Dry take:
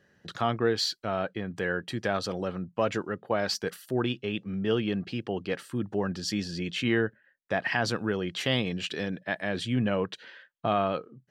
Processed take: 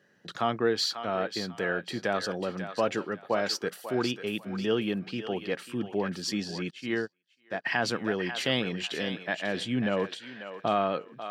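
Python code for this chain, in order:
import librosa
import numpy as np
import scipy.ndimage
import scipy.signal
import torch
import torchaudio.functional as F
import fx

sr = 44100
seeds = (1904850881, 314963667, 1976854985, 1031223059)

y = scipy.signal.sosfilt(scipy.signal.butter(2, 160.0, 'highpass', fs=sr, output='sos'), x)
y = fx.echo_thinned(y, sr, ms=543, feedback_pct=29, hz=720.0, wet_db=-8)
y = fx.upward_expand(y, sr, threshold_db=-44.0, expansion=2.5, at=(6.69, 7.65), fade=0.02)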